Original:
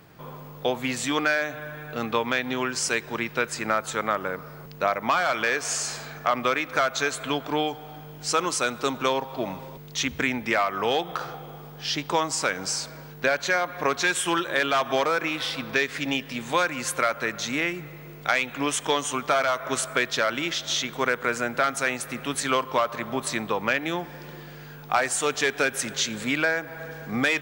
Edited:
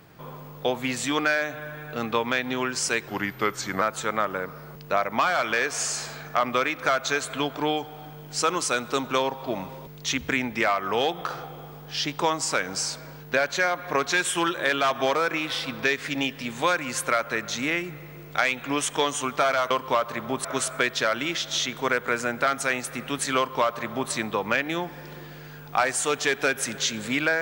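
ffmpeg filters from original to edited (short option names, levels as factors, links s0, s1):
-filter_complex "[0:a]asplit=5[s0][s1][s2][s3][s4];[s0]atrim=end=3.084[s5];[s1]atrim=start=3.08:end=3.72,asetpts=PTS-STARTPTS,asetrate=38367,aresample=44100,atrim=end_sample=32441,asetpts=PTS-STARTPTS[s6];[s2]atrim=start=3.716:end=19.612[s7];[s3]atrim=start=22.538:end=23.282[s8];[s4]atrim=start=19.608[s9];[s5][s6]acrossfade=d=0.004:c1=hsin:c2=hsin[s10];[s10][s7]acrossfade=d=0.004:c1=hsin:c2=hsin[s11];[s11][s8]acrossfade=d=0.004:c1=hsin:c2=hsin[s12];[s12][s9]acrossfade=d=0.004:c1=hsin:c2=hsin"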